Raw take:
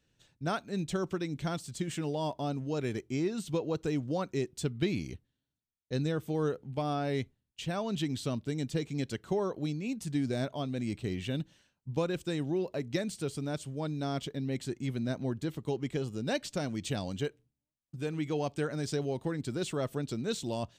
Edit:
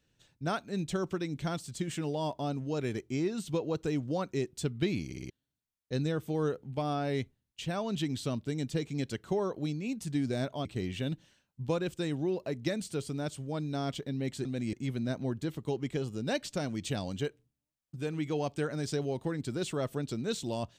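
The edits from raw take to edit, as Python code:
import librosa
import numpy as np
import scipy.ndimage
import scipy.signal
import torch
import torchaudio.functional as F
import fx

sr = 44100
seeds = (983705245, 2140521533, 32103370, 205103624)

y = fx.edit(x, sr, fx.stutter_over(start_s=5.06, slice_s=0.06, count=4),
    fx.move(start_s=10.65, length_s=0.28, to_s=14.73), tone=tone)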